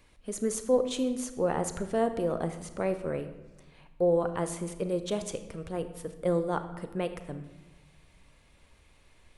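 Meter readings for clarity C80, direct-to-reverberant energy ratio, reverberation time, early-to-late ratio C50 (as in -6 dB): 12.5 dB, 9.0 dB, 1.2 s, 10.5 dB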